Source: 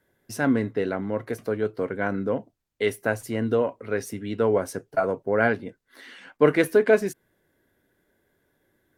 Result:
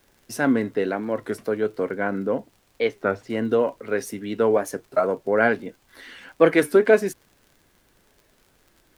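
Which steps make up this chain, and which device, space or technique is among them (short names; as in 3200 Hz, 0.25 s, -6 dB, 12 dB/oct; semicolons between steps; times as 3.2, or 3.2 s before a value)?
HPF 170 Hz 12 dB/oct; 1.93–3.3 air absorption 180 m; warped LP (record warp 33 1/3 rpm, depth 160 cents; crackle 54/s -45 dBFS; pink noise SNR 39 dB); gain +2.5 dB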